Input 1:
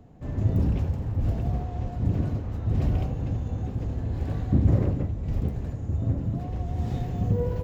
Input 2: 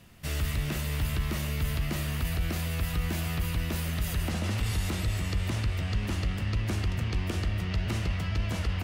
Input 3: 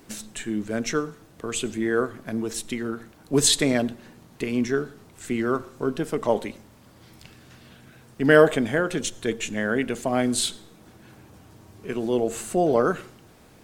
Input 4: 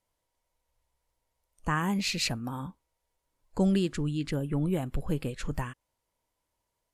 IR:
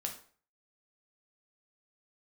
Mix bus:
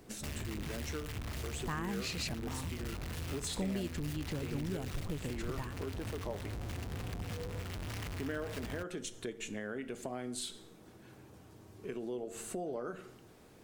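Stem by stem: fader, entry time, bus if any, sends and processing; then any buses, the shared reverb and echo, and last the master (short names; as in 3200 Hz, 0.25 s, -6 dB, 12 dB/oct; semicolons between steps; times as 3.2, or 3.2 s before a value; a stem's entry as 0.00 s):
-10.0 dB, 0.00 s, bus A, no send, dry
-5.5 dB, 0.00 s, no bus, no send, bell 310 Hz -11.5 dB 2.1 oct; limiter -25.5 dBFS, peak gain reduction 4 dB; Schmitt trigger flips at -45 dBFS
-9.5 dB, 0.00 s, bus A, send -11 dB, dry
-2.0 dB, 0.00 s, no bus, no send, dry
bus A: 0.0 dB, bell 400 Hz +5.5 dB; compressor, threshold -35 dBFS, peak gain reduction 18 dB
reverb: on, RT60 0.45 s, pre-delay 3 ms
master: compressor 2:1, threshold -40 dBFS, peak gain reduction 10 dB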